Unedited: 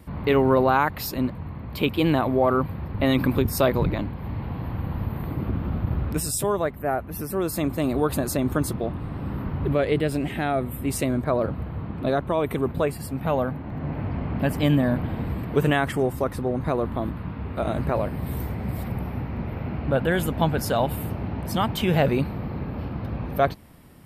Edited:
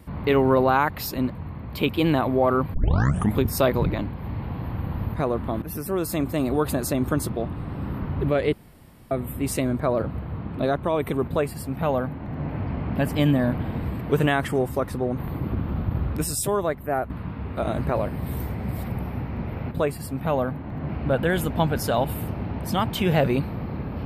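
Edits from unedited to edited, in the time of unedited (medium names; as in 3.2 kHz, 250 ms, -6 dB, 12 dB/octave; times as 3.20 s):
2.74 s: tape start 0.65 s
5.14–7.06 s: swap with 16.62–17.10 s
9.97–10.55 s: room tone
12.71–13.89 s: copy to 19.71 s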